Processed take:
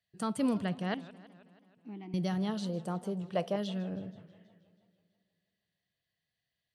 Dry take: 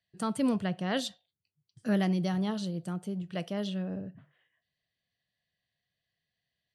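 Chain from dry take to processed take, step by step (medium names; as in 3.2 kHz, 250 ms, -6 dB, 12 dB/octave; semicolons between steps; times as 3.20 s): 0.94–2.14 s: vowel filter u; 2.69–3.56 s: high-order bell 690 Hz +9 dB; modulated delay 161 ms, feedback 63%, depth 203 cents, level -18.5 dB; trim -2 dB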